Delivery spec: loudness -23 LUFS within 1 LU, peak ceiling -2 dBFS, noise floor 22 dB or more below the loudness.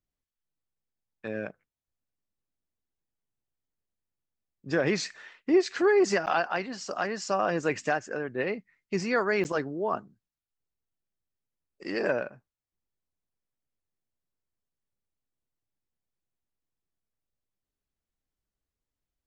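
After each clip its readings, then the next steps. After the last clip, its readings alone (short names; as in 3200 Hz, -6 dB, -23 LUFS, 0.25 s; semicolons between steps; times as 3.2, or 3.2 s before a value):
dropouts 2; longest dropout 9.3 ms; loudness -28.5 LUFS; peak -12.0 dBFS; loudness target -23.0 LUFS
-> interpolate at 6.26/9.44, 9.3 ms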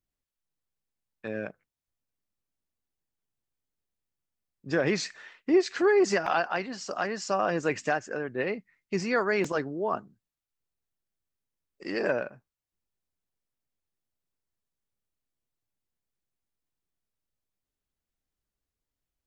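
dropouts 0; loudness -28.5 LUFS; peak -12.0 dBFS; loudness target -23.0 LUFS
-> gain +5.5 dB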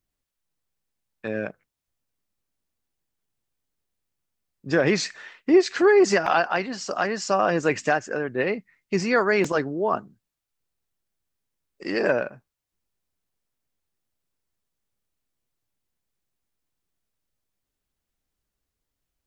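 loudness -23.0 LUFS; peak -6.5 dBFS; noise floor -84 dBFS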